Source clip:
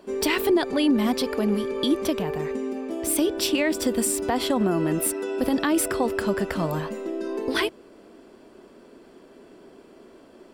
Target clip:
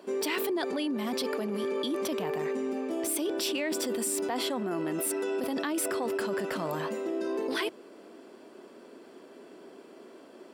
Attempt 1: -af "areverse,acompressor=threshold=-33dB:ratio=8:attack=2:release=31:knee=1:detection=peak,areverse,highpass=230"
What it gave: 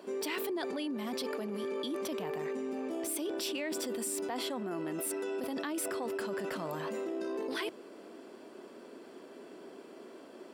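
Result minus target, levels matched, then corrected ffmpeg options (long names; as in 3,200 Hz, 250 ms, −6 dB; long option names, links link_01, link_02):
downward compressor: peak gain reduction +5 dB
-af "areverse,acompressor=threshold=-27dB:ratio=8:attack=2:release=31:knee=1:detection=peak,areverse,highpass=230"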